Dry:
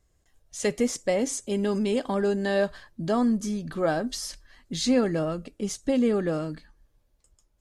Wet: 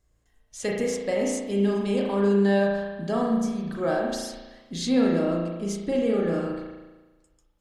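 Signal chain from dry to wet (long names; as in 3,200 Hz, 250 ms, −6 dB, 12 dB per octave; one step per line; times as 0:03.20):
spring reverb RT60 1.2 s, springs 35 ms, chirp 35 ms, DRR −2 dB
level −3.5 dB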